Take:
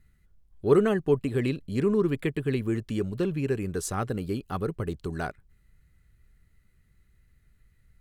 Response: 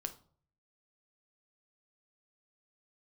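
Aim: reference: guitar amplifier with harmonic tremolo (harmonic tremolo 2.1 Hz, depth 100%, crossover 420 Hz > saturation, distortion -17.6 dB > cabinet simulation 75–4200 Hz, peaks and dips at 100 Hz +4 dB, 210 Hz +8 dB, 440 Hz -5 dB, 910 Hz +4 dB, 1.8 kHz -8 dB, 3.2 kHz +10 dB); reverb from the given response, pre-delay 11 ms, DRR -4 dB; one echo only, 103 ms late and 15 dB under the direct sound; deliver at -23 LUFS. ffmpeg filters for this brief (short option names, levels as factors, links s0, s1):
-filter_complex "[0:a]aecho=1:1:103:0.178,asplit=2[s0][s1];[1:a]atrim=start_sample=2205,adelay=11[s2];[s1][s2]afir=irnorm=-1:irlink=0,volume=1.88[s3];[s0][s3]amix=inputs=2:normalize=0,acrossover=split=420[s4][s5];[s4]aeval=exprs='val(0)*(1-1/2+1/2*cos(2*PI*2.1*n/s))':c=same[s6];[s5]aeval=exprs='val(0)*(1-1/2-1/2*cos(2*PI*2.1*n/s))':c=same[s7];[s6][s7]amix=inputs=2:normalize=0,asoftclip=threshold=0.178,highpass=75,equalizer=f=100:t=q:w=4:g=4,equalizer=f=210:t=q:w=4:g=8,equalizer=f=440:t=q:w=4:g=-5,equalizer=f=910:t=q:w=4:g=4,equalizer=f=1800:t=q:w=4:g=-8,equalizer=f=3200:t=q:w=4:g=10,lowpass=f=4200:w=0.5412,lowpass=f=4200:w=1.3066,volume=1.5"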